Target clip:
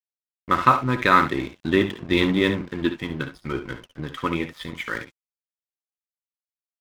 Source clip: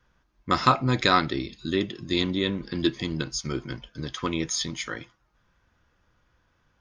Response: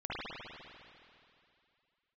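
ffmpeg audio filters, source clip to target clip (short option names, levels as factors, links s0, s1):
-filter_complex "[0:a]lowpass=f=3000:w=0.5412,lowpass=f=3000:w=1.3066,equalizer=f=1400:w=0.58:g=4.5,bandreject=f=730:w=12,dynaudnorm=f=110:g=7:m=2.11,aeval=exprs='sgn(val(0))*max(abs(val(0))-0.015,0)':c=same,asettb=1/sr,asplit=3[s0][s1][s2];[s0]atrim=end=2.664[s3];[s1]atrim=start=2.66:end=4.95,asetpts=PTS-STARTPTS,afade=t=in:d=0.004:c=qsin,afade=t=out:st=2.286:d=0.004:c=qsin,flanger=delay=1.9:depth=5.8:regen=68:speed=1:shape=sinusoidal[s4];[s2]atrim=start=4.946[s5];[s3][s4]acrossfade=d=0.004:c1=hsin:c2=qsin[s6];[s6][s5]acrossfade=d=0.004:c1=qsin:c2=hsin,aecho=1:1:59|70:0.211|0.251"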